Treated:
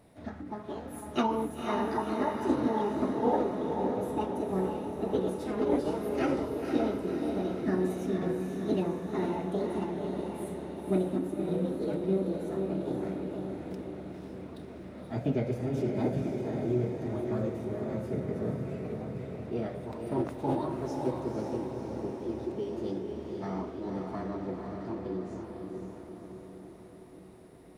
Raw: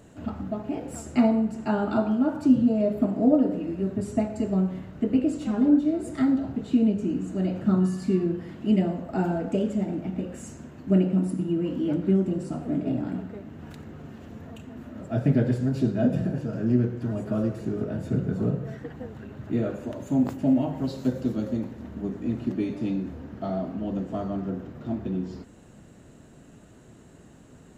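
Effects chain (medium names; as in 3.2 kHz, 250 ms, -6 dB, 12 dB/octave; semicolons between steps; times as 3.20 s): formant shift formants +5 st; echo that smears into a reverb 520 ms, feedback 61%, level -4 dB; trim -8 dB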